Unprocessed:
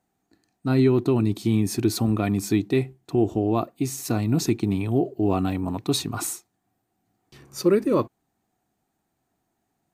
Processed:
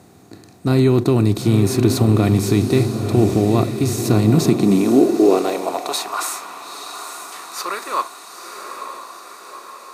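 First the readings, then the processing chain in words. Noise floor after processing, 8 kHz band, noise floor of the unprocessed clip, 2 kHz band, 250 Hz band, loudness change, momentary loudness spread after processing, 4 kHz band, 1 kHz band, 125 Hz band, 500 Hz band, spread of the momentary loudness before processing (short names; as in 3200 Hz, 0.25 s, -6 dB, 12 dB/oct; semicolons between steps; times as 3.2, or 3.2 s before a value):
-44 dBFS, +5.5 dB, -77 dBFS, +7.0 dB, +6.0 dB, +6.5 dB, 18 LU, +6.0 dB, +8.5 dB, +8.0 dB, +6.5 dB, 8 LU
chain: per-bin compression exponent 0.6; diffused feedback echo 0.913 s, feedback 59%, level -7.5 dB; high-pass sweep 85 Hz -> 1100 Hz, 3.99–6.18; gain +1 dB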